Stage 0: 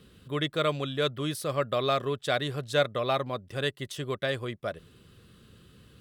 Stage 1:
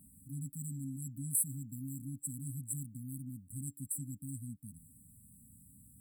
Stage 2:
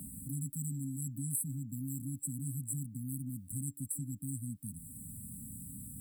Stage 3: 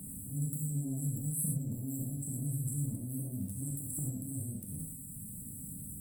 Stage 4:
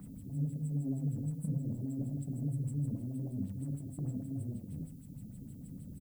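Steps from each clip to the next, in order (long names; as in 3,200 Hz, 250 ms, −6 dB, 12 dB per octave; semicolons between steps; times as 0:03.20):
bass and treble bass −5 dB, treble +12 dB; brick-wall band-stop 280–7,600 Hz; level −1.5 dB
multiband upward and downward compressor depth 70%; level +3 dB
transient designer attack −11 dB, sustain +11 dB; reverb whose tail is shaped and stops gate 140 ms flat, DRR −2 dB; level −2 dB
single-tap delay 1,138 ms −21 dB; auto-filter low-pass sine 6.4 Hz 370–4,300 Hz; background noise violet −69 dBFS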